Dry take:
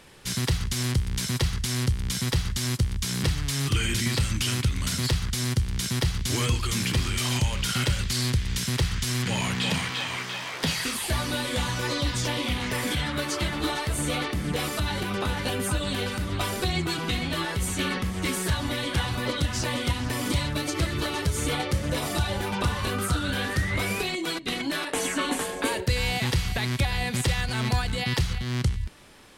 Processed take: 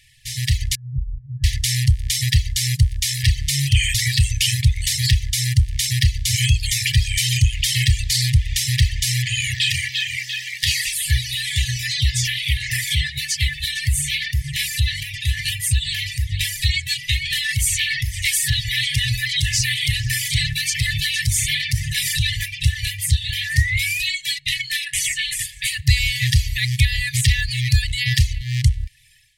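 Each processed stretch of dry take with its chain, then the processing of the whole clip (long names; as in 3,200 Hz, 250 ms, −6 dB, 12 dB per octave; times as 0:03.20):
0:00.75–0:01.44: phase distortion by the signal itself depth 0.06 ms + Butterworth low-pass 910 Hz + phaser with its sweep stopped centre 350 Hz, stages 6
0:17.25–0:22.46: parametric band 73 Hz −13.5 dB 0.4 octaves + envelope flattener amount 70%
whole clip: automatic gain control gain up to 11 dB; reverb reduction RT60 1.5 s; brick-wall band-stop 140–1,700 Hz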